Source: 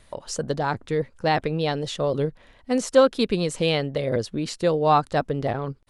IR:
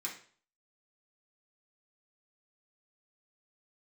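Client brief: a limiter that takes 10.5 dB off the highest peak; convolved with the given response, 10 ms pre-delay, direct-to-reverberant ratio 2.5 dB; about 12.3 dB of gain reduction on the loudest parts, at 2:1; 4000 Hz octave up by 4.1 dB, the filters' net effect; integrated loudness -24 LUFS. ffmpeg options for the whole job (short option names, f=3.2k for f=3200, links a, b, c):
-filter_complex "[0:a]equalizer=f=4k:t=o:g=5,acompressor=threshold=-34dB:ratio=2,alimiter=level_in=2dB:limit=-24dB:level=0:latency=1,volume=-2dB,asplit=2[a][b];[1:a]atrim=start_sample=2205,adelay=10[c];[b][c]afir=irnorm=-1:irlink=0,volume=-3dB[d];[a][d]amix=inputs=2:normalize=0,volume=10.5dB"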